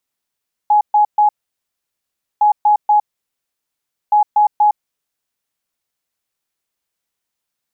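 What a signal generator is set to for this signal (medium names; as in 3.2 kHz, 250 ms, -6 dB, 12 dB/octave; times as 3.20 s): beep pattern sine 838 Hz, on 0.11 s, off 0.13 s, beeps 3, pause 1.12 s, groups 3, -8 dBFS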